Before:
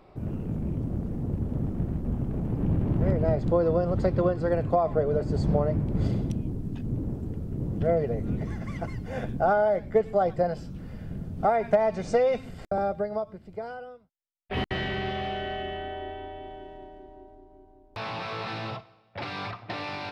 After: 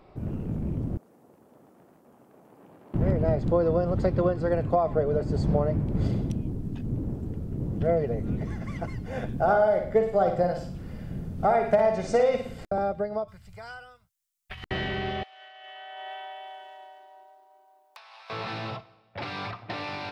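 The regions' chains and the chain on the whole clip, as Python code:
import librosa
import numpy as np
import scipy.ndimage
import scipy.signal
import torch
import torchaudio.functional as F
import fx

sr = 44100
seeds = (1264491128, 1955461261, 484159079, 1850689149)

y = fx.chain(x, sr, fx.highpass(hz=1000.0, slope=12),
    fx.peak_eq(hz=2500.0, db=-11.5, octaves=2.9), at=(0.97, 2.94))
y = fx.chain(y, sr, fx.high_shelf(hz=5700.0, db=3.5),
    fx.room_flutter(wall_m=9.6, rt60_s=0.5), at=(9.32, 12.64))
y = fx.chain(y, sr, fx.curve_eq(hz=(110.0, 320.0, 1200.0, 4400.0, 7100.0), db=(0, -25, -2, 3, 9)),
    fx.over_compress(threshold_db=-39.0, ratio=-1.0), at=(13.28, 14.64))
y = fx.chain(y, sr, fx.highpass(hz=740.0, slope=24),
    fx.high_shelf(hz=6600.0, db=11.0),
    fx.over_compress(threshold_db=-42.0, ratio=-0.5), at=(15.23, 18.3))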